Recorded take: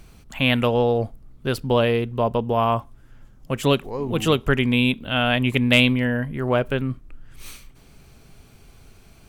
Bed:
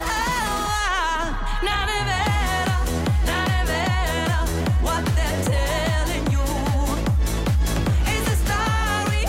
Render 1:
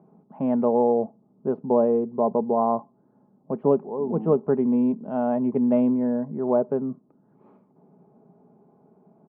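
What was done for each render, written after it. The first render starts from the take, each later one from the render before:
elliptic band-pass filter 170–900 Hz, stop band 80 dB
comb filter 4.8 ms, depth 33%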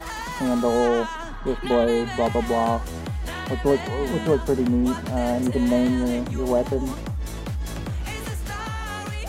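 mix in bed −9 dB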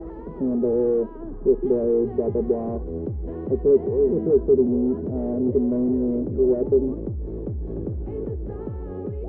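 soft clipping −23 dBFS, distortion −8 dB
low-pass with resonance 400 Hz, resonance Q 4.9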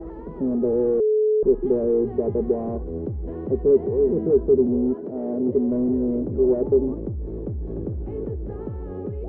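0:01.00–0:01.43: beep over 429 Hz −16 dBFS
0:04.93–0:05.67: high-pass filter 390 Hz → 100 Hz
0:06.27–0:06.98: parametric band 920 Hz +4 dB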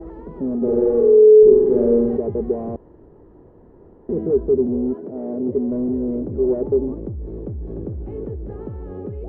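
0:00.57–0:02.17: flutter between parallel walls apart 8 metres, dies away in 1.3 s
0:02.76–0:04.09: fill with room tone
0:05.04–0:06.07: high-frequency loss of the air 150 metres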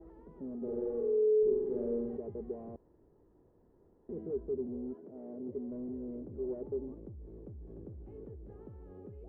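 level −18.5 dB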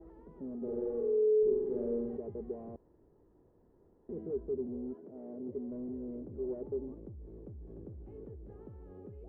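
no processing that can be heard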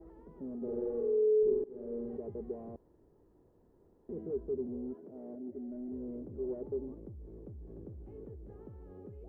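0:01.64–0:02.25: fade in, from −19 dB
0:05.35–0:05.92: phaser with its sweep stopped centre 700 Hz, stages 8

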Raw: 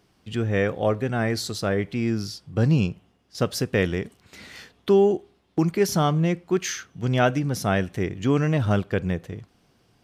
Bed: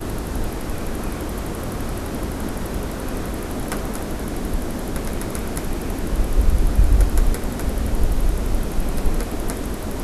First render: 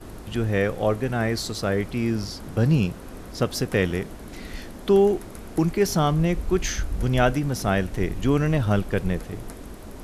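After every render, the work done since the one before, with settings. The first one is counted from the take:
mix in bed −13 dB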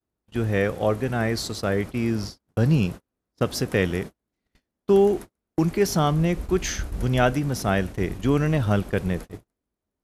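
high-pass filter 43 Hz 12 dB per octave
noise gate −31 dBFS, range −44 dB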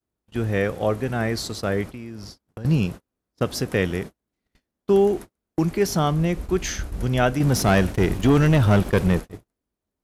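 0:01.92–0:02.65: downward compressor, threshold −33 dBFS
0:07.40–0:09.20: leveller curve on the samples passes 2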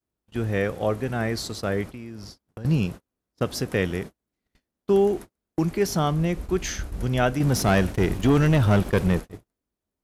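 level −2 dB

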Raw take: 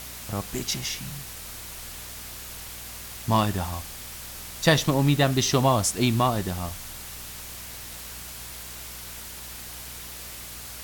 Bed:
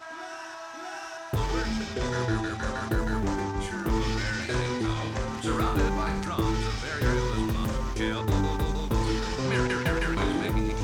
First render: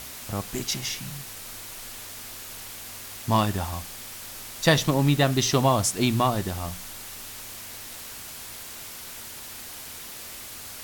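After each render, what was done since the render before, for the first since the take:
hum removal 60 Hz, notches 3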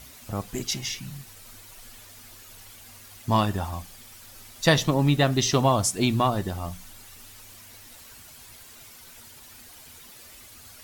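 broadband denoise 10 dB, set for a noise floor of −40 dBFS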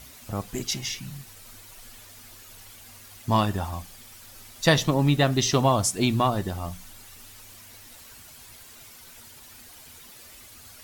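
no processing that can be heard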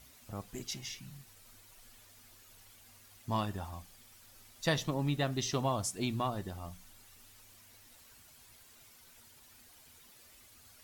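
level −11.5 dB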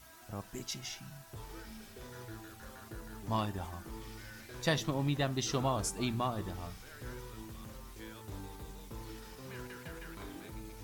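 mix in bed −20 dB

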